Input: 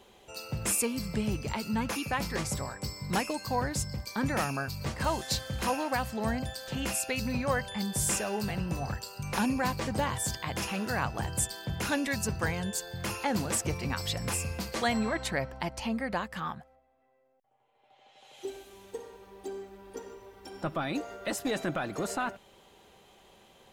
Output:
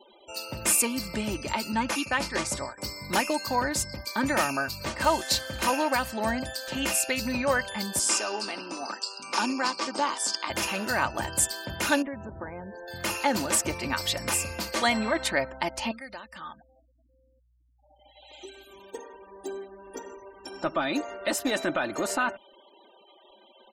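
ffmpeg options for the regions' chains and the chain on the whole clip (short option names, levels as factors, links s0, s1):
-filter_complex "[0:a]asettb=1/sr,asplit=3[s0][s1][s2];[s0]atrim=end=1.724[s3];[s1]atrim=start=1.72:end=2.78,asetpts=PTS-STARTPTS,afade=t=in:d=0.004:c=qsin,afade=t=out:st=1.056:d=0.004:c=qsin,lowpass=f=11000:w=0.5412,lowpass=f=11000:w=1.3066,agate=range=0.0224:threshold=0.02:ratio=3:release=100:detection=peak[s4];[s2]atrim=start=2.776[s5];[s3][s4]acrossfade=d=0.004:c1=hsin:c2=qsin[s6];[s6][s5]acrossfade=d=0.004:c1=qsin:c2=hsin,asettb=1/sr,asplit=3[s7][s8][s9];[s7]atrim=end=7.994[s10];[s8]atrim=start=7.99:end=10.5,asetpts=PTS-STARTPTS,afade=t=in:d=0.004:c=qsin,afade=t=out:st=2.506:d=0.004:c=qsin,tremolo=f=110:d=0.333,highpass=f=250:w=0.5412,highpass=f=250:w=1.3066,equalizer=f=580:t=q:w=4:g=-5,equalizer=f=1200:t=q:w=4:g=5,equalizer=f=1800:t=q:w=4:g=-5,equalizer=f=5100:t=q:w=4:g=8,lowpass=f=9300:w=0.5412,lowpass=f=9300:w=1.3066[s11];[s9]atrim=start=10.496[s12];[s10][s11]acrossfade=d=0.004:c1=hsin:c2=qsin[s13];[s13][s12]acrossfade=d=0.004:c1=qsin:c2=hsin,asettb=1/sr,asplit=3[s14][s15][s16];[s14]atrim=end=12.024[s17];[s15]atrim=start=12.02:end=12.88,asetpts=PTS-STARTPTS,afade=t=in:d=0.004:c=qsin,afade=t=out:st=0.856:d=0.004:c=qsin,lowpass=1100,acompressor=threshold=0.02:ratio=16:attack=3.2:release=140:knee=1:detection=peak[s18];[s16]atrim=start=12.876[s19];[s17][s18]acrossfade=d=0.004:c1=hsin:c2=qsin[s20];[s20][s19]acrossfade=d=0.004:c1=qsin:c2=hsin,asettb=1/sr,asplit=3[s21][s22][s23];[s21]atrim=end=15.914[s24];[s22]atrim=start=15.91:end=18.8,asetpts=PTS-STARTPTS,afade=t=in:d=0.004:c=qsin,afade=t=out:st=2.886:d=0.004:c=qsin,acrossover=split=1300|3300[s25][s26][s27];[s25]acompressor=threshold=0.00398:ratio=4[s28];[s26]acompressor=threshold=0.00178:ratio=4[s29];[s27]acompressor=threshold=0.00141:ratio=4[s30];[s28][s29][s30]amix=inputs=3:normalize=0,aeval=exprs='val(0)+0.001*(sin(2*PI*60*n/s)+sin(2*PI*2*60*n/s)/2+sin(2*PI*3*60*n/s)/3+sin(2*PI*4*60*n/s)/4+sin(2*PI*5*60*n/s)/5)':c=same[s31];[s23]atrim=start=18.796[s32];[s24][s31]acrossfade=d=0.004:c1=hsin:c2=qsin[s33];[s33][s32]acrossfade=d=0.004:c1=qsin:c2=hsin,lowshelf=f=210:g=-11,aecho=1:1:3.3:0.45,afftfilt=real='re*gte(hypot(re,im),0.00224)':imag='im*gte(hypot(re,im),0.00224)':win_size=1024:overlap=0.75,volume=1.88"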